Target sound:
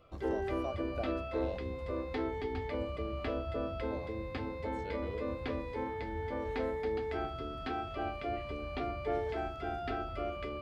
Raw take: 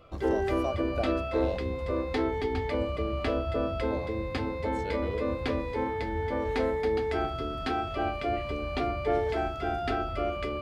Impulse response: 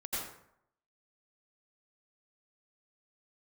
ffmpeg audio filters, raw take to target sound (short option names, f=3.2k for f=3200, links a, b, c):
-filter_complex "[0:a]acrossover=split=4500[a][b];[b]acompressor=threshold=-59dB:ratio=4:attack=1:release=60[c];[a][c]amix=inputs=2:normalize=0,volume=-7dB"